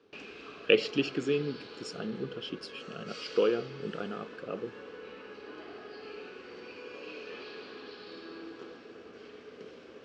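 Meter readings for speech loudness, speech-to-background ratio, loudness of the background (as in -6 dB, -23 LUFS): -33.0 LUFS, 13.0 dB, -46.0 LUFS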